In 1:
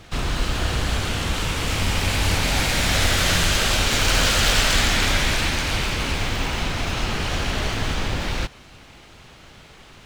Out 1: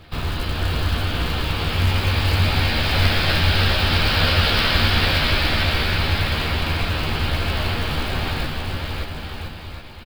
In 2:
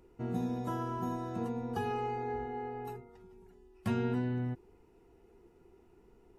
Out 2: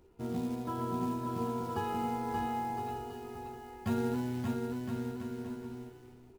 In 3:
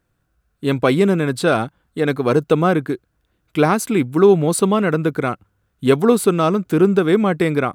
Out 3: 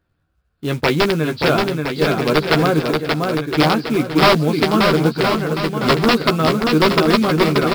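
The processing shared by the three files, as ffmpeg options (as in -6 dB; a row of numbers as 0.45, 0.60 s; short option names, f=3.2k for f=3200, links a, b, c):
-filter_complex "[0:a]equalizer=f=91:t=o:w=0.28:g=7,bandreject=f=2k:w=28,aresample=11025,aeval=exprs='(mod(2.11*val(0)+1,2)-1)/2.11':c=same,aresample=44100,acrusher=bits=5:mode=log:mix=0:aa=0.000001,asplit=2[a][b];[b]adelay=13,volume=-6dB[c];[a][c]amix=inputs=2:normalize=0,asplit=2[d][e];[e]aecho=0:1:580|1015|1341|1586|1769:0.631|0.398|0.251|0.158|0.1[f];[d][f]amix=inputs=2:normalize=0,volume=-2dB"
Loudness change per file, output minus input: +1.0, 0.0, +1.0 LU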